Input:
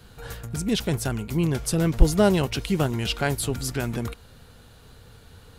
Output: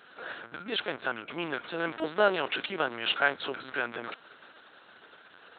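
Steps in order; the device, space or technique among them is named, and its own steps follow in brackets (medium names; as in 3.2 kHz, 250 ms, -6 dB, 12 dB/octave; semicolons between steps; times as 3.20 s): talking toy (LPC vocoder at 8 kHz pitch kept; high-pass 530 Hz 12 dB/octave; peaking EQ 1.5 kHz +7 dB 0.53 oct)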